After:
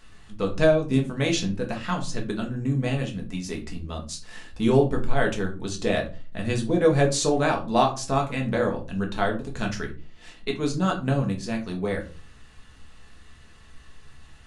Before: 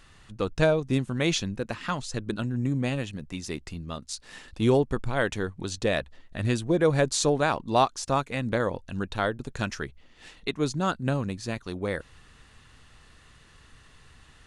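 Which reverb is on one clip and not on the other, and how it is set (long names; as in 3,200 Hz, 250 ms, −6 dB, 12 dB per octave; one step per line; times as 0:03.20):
rectangular room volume 180 cubic metres, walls furnished, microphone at 1.5 metres
level −1.5 dB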